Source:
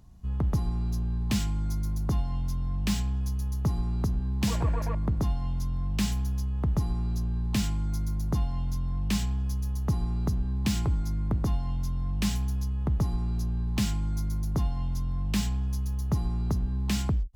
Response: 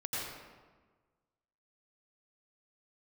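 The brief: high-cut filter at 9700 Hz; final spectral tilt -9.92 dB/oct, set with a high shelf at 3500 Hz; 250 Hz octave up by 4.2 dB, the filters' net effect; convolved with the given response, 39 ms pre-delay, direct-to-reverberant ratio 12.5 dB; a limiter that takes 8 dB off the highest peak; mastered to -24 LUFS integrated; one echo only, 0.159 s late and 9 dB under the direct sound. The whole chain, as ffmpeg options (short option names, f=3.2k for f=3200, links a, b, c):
-filter_complex "[0:a]lowpass=9.7k,equalizer=f=250:t=o:g=6,highshelf=f=3.5k:g=-7.5,alimiter=limit=-21dB:level=0:latency=1,aecho=1:1:159:0.355,asplit=2[a][b];[1:a]atrim=start_sample=2205,adelay=39[c];[b][c]afir=irnorm=-1:irlink=0,volume=-16.5dB[d];[a][d]amix=inputs=2:normalize=0,volume=5.5dB"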